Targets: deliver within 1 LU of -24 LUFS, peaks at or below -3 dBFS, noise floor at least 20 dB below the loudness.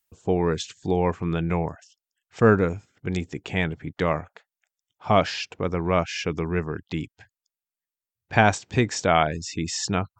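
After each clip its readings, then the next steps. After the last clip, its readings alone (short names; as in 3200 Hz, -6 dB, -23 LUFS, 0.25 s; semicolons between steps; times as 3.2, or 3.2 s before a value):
loudness -25.0 LUFS; peak -1.0 dBFS; loudness target -24.0 LUFS
-> gain +1 dB; limiter -3 dBFS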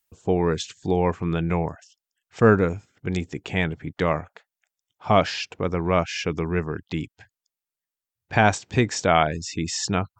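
loudness -24.0 LUFS; peak -3.0 dBFS; noise floor -90 dBFS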